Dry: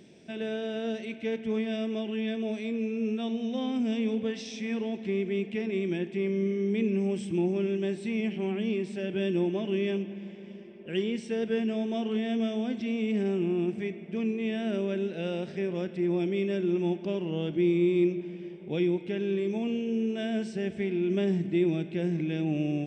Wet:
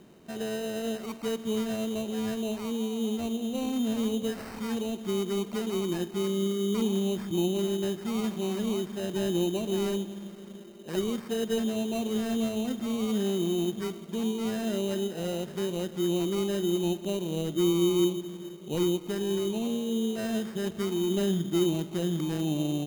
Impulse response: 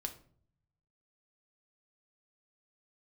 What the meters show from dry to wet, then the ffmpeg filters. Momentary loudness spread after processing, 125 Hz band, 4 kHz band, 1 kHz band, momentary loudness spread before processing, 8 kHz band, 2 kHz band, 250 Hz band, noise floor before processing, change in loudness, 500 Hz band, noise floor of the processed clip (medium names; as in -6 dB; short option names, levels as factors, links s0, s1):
6 LU, 0.0 dB, +5.5 dB, +3.5 dB, 6 LU, no reading, -4.0 dB, 0.0 dB, -44 dBFS, 0.0 dB, 0.0 dB, -44 dBFS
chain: -af "acrusher=samples=13:mix=1:aa=0.000001"